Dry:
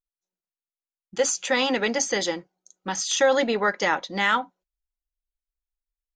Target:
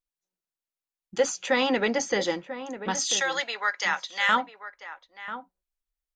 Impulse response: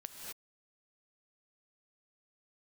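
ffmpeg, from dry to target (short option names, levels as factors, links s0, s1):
-filter_complex "[0:a]asettb=1/sr,asplit=3[s0][s1][s2];[s0]atrim=end=1.194[s3];[s1]atrim=start=1.19:end=2.3,asetpts=PTS-STARTPTS,afade=t=in:d=0.004:c=qsin,afade=t=out:st=1.106:d=0.004:c=qsin,aemphasis=mode=reproduction:type=50kf[s4];[s2]atrim=start=2.296[s5];[s3][s4]acrossfade=d=0.004:c1=hsin:c2=qsin[s6];[s6][s5]acrossfade=d=0.004:c1=qsin:c2=hsin,asettb=1/sr,asplit=3[s7][s8][s9];[s7]atrim=end=3.124[s10];[s8]atrim=start=3.12:end=4.29,asetpts=PTS-STARTPTS,afade=t=in:d=0.004:c=qsin,afade=t=out:st=1.166:d=0.004:c=qsin,highpass=1200[s11];[s9]atrim=start=4.286[s12];[s10][s11]acrossfade=d=0.004:c1=hsin:c2=qsin[s13];[s13][s12]acrossfade=d=0.004:c1=qsin:c2=hsin,asplit=2[s14][s15];[s15]adelay=991.3,volume=0.282,highshelf=f=4000:g=-22.3[s16];[s14][s16]amix=inputs=2:normalize=0"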